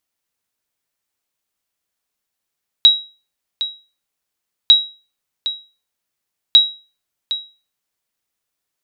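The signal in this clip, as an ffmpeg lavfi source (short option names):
-f lavfi -i "aevalsrc='0.891*(sin(2*PI*3850*mod(t,1.85))*exp(-6.91*mod(t,1.85)/0.33)+0.224*sin(2*PI*3850*max(mod(t,1.85)-0.76,0))*exp(-6.91*max(mod(t,1.85)-0.76,0)/0.33))':d=5.55:s=44100"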